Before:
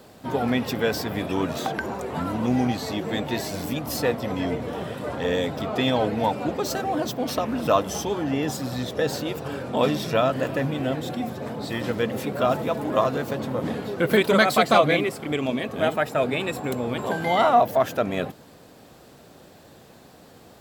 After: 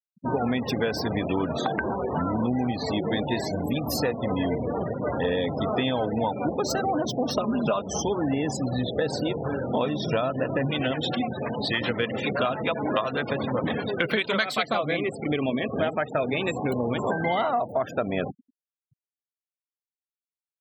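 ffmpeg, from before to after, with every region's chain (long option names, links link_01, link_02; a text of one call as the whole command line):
ffmpeg -i in.wav -filter_complex "[0:a]asettb=1/sr,asplit=3[link_01][link_02][link_03];[link_01]atrim=end=7.364[link_04];[link_02]atrim=start=7.36:end=7.82,asetpts=PTS-STARTPTS,afade=type=in:duration=0.004:curve=qsin,afade=type=out:start_time=0.456:duration=0.004:curve=qsin,bandreject=frequency=1800:width=6.4,asoftclip=type=hard:threshold=-8dB,aecho=1:1:5:0.72,atrim=end_sample=20286[link_05];[link_03]atrim=start=7.816[link_06];[link_04][link_05]acrossfade=duration=0.004:curve1=hsin:curve2=qsin[link_07];[link_07][link_06]acrossfade=duration=0.004:curve1=qsin:curve2=hsin,asettb=1/sr,asplit=3[link_08][link_09][link_10];[link_08]atrim=end=10.694[link_11];[link_09]atrim=start=10.69:end=14.66,asetpts=PTS-STARTPTS,afade=type=in:duration=0.004:curve=qsin,afade=type=out:start_time=3.966:duration=0.004:curve=qsin,equalizer=frequency=2800:width_type=o:width=2.4:gain=10,acrossover=split=480[link_12][link_13];[link_12]aeval=exprs='val(0)*(1-0.5/2+0.5/2*cos(2*PI*9.8*n/s))':channel_layout=same[link_14];[link_13]aeval=exprs='val(0)*(1-0.5/2-0.5/2*cos(2*PI*9.8*n/s))':channel_layout=same[link_15];[link_14][link_15]amix=inputs=2:normalize=0[link_16];[link_10]atrim=start=14.656[link_17];[link_11][link_16]acrossfade=duration=0.004:curve1=hsin:curve2=qsin[link_18];[link_18][link_17]acrossfade=duration=0.004:curve1=qsin:curve2=hsin,afftfilt=real='re*gte(hypot(re,im),0.0316)':imag='im*gte(hypot(re,im),0.0316)':win_size=1024:overlap=0.75,acompressor=threshold=-25dB:ratio=10,volume=3.5dB" out.wav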